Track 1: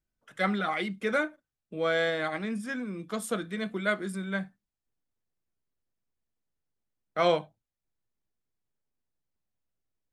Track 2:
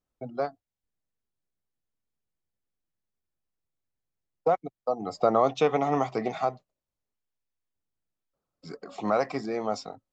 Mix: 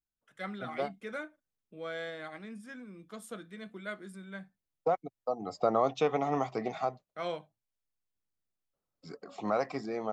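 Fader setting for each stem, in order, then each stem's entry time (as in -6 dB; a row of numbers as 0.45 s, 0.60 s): -12.0 dB, -5.0 dB; 0.00 s, 0.40 s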